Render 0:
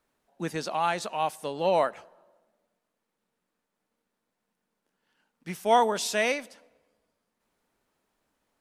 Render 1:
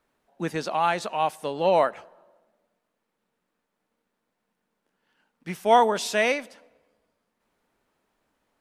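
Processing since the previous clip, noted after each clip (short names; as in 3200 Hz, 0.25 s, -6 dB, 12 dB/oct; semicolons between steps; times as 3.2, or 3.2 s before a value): tone controls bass -1 dB, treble -5 dB; gain +3.5 dB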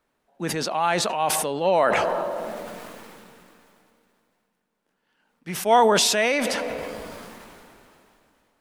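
sustainer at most 21 dB/s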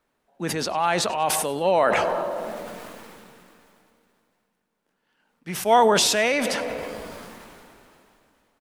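frequency-shifting echo 98 ms, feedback 44%, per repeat -60 Hz, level -21.5 dB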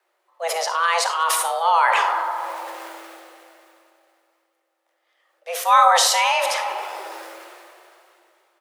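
frequency shift +330 Hz; on a send at -7.5 dB: reverb RT60 0.55 s, pre-delay 10 ms; on the sum: gain +2 dB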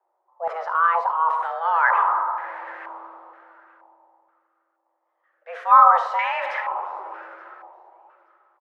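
feedback echo 0.876 s, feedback 22%, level -23.5 dB; stepped low-pass 2.1 Hz 880–1800 Hz; gain -7.5 dB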